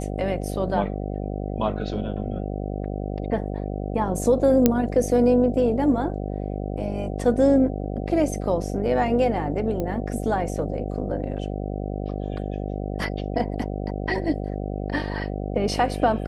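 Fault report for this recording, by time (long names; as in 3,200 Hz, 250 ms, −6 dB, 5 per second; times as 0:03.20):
mains buzz 50 Hz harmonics 15 −29 dBFS
0:04.66: click −3 dBFS
0:09.80: click −16 dBFS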